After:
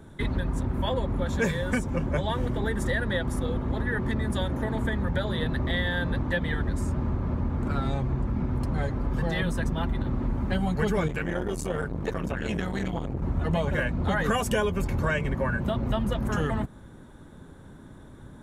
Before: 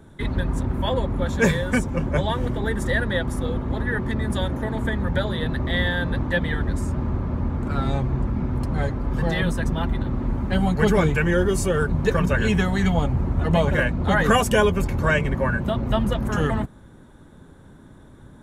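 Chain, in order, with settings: compression 3:1, threshold -24 dBFS, peak gain reduction 8.5 dB; 11.08–13.22 s: transformer saturation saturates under 430 Hz

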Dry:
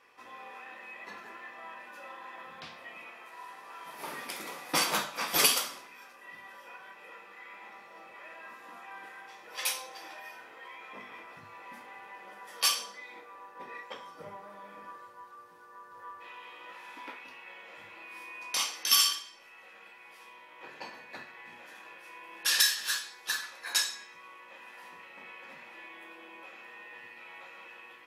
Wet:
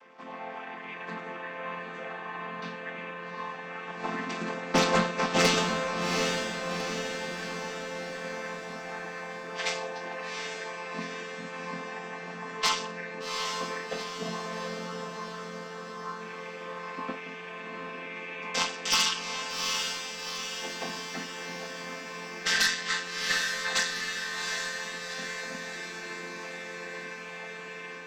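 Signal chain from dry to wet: vocoder on a held chord major triad, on F3; Chebyshev shaper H 5 -9 dB, 6 -22 dB, 7 -21 dB, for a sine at -11.5 dBFS; echo that smears into a reverb 777 ms, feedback 59%, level -4 dB; trim -2 dB

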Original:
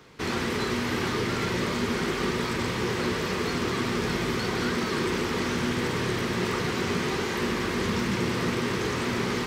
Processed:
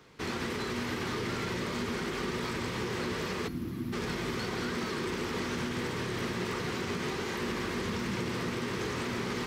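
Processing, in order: time-frequency box 3.48–3.93 s, 350–10000 Hz -16 dB; peak limiter -19.5 dBFS, peak gain reduction 4.5 dB; trim -5 dB

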